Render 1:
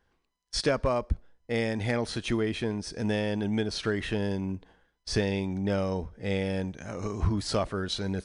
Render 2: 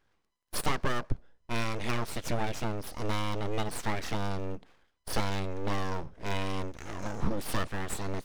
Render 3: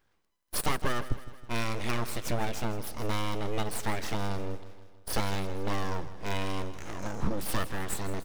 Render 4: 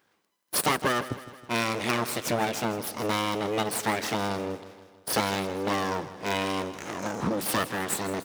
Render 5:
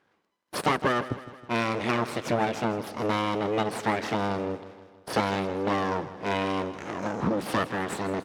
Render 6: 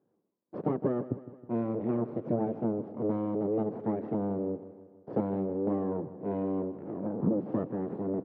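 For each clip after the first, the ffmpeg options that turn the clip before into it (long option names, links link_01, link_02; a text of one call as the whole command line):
ffmpeg -i in.wav -af "aeval=exprs='abs(val(0))':channel_layout=same" out.wav
ffmpeg -i in.wav -af "highshelf=frequency=11000:gain=8,aecho=1:1:159|318|477|636|795:0.178|0.0978|0.0538|0.0296|0.0163" out.wav
ffmpeg -i in.wav -af "highpass=180,volume=6.5dB" out.wav
ffmpeg -i in.wav -af "aemphasis=mode=reproduction:type=75fm,volume=1dB" out.wav
ffmpeg -i in.wav -af "asuperpass=centerf=240:order=4:qfactor=0.62" out.wav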